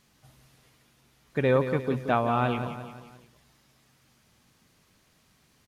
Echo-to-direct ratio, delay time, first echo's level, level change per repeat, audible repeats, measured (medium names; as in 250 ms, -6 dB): -9.0 dB, 175 ms, -10.0 dB, -6.0 dB, 4